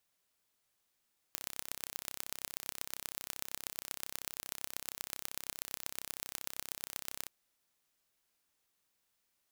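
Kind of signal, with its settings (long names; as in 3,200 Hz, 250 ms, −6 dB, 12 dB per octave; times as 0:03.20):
impulse train 32.8 per second, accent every 4, −9.5 dBFS 5.93 s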